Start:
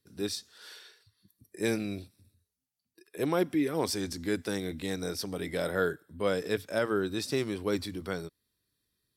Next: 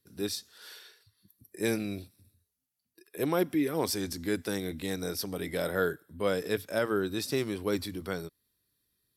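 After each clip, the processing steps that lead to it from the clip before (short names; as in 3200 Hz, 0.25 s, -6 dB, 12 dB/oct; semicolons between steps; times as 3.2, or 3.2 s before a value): bell 12000 Hz +9.5 dB 0.28 oct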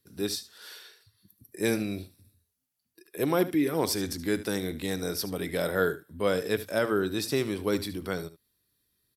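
echo 74 ms -15 dB; gain +2.5 dB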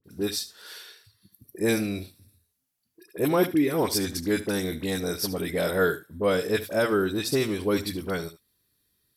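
dispersion highs, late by 42 ms, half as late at 1400 Hz; gain +3 dB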